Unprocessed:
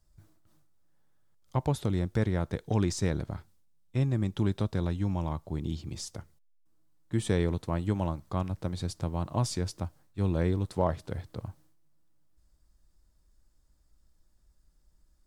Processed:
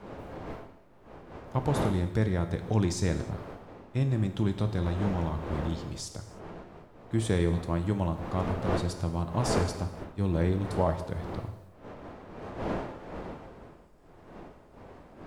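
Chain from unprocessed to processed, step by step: wind noise 630 Hz -40 dBFS; gated-style reverb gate 340 ms falling, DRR 7 dB

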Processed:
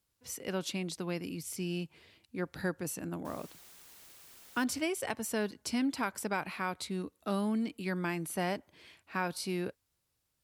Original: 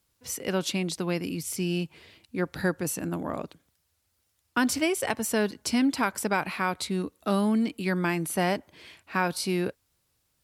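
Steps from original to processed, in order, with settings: 3.25–4.64 s: word length cut 8-bit, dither triangular; trim -7.5 dB

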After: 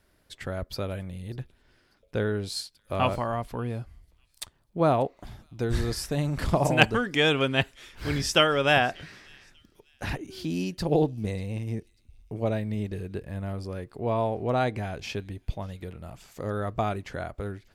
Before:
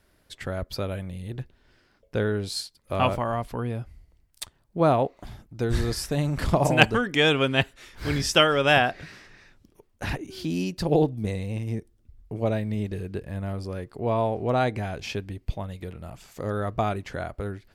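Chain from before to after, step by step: feedback echo behind a high-pass 591 ms, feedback 33%, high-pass 3.5 kHz, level -22.5 dB; trim -2 dB

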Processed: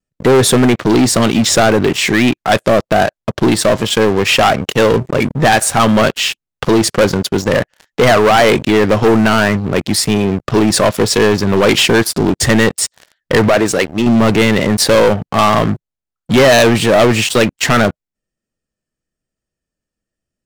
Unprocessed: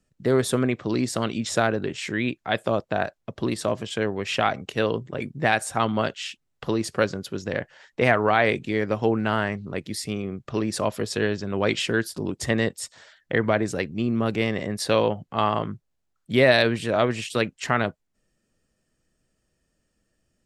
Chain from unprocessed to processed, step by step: 13.48–14.07 s: bass shelf 250 Hz -10.5 dB; waveshaping leveller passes 5; vibrato 1.1 Hz 22 cents

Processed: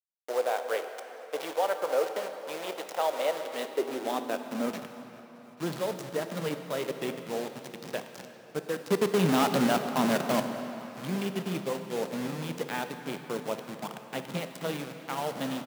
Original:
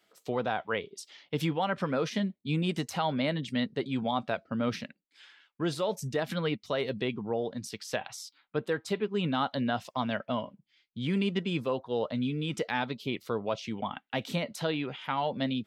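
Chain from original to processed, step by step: send-on-delta sampling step -29.5 dBFS; high-pass 120 Hz 12 dB/octave; 8.89–10.40 s: waveshaping leveller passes 3; reverberation RT60 4.2 s, pre-delay 14 ms, DRR 6.5 dB; high-pass sweep 530 Hz -> 160 Hz, 3.39–4.99 s; bass shelf 320 Hz -9 dB; delay 841 ms -23 dB; dynamic bell 460 Hz, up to +4 dB, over -37 dBFS, Q 1; trim -2.5 dB

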